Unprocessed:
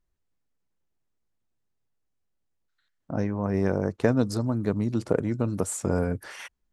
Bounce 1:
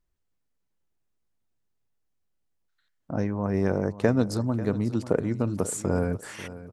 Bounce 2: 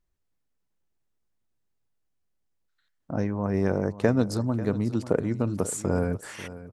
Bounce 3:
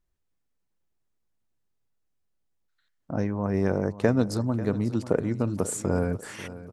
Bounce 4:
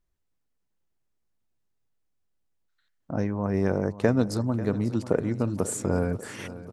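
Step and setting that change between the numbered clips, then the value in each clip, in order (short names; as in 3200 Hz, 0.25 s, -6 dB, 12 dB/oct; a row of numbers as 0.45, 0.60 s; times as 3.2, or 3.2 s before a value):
feedback echo, feedback: 26, 16, 40, 61%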